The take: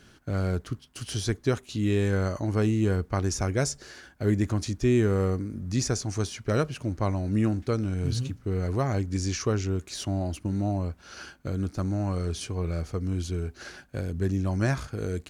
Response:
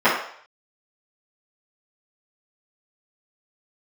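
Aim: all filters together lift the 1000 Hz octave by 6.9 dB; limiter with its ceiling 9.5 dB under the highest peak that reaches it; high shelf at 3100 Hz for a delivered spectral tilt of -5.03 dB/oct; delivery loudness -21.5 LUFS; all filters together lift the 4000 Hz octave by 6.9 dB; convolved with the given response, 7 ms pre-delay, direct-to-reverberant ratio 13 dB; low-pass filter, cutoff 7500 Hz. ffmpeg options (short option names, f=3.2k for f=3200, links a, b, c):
-filter_complex "[0:a]lowpass=7.5k,equalizer=f=1k:t=o:g=8.5,highshelf=f=3.1k:g=5.5,equalizer=f=4k:t=o:g=4.5,alimiter=limit=-18dB:level=0:latency=1,asplit=2[a][b];[1:a]atrim=start_sample=2205,adelay=7[c];[b][c]afir=irnorm=-1:irlink=0,volume=-36.5dB[d];[a][d]amix=inputs=2:normalize=0,volume=7.5dB"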